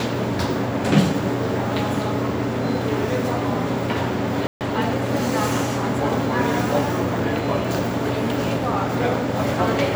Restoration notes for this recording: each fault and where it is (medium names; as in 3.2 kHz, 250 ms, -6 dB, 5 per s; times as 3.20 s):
4.47–4.61 s: dropout 138 ms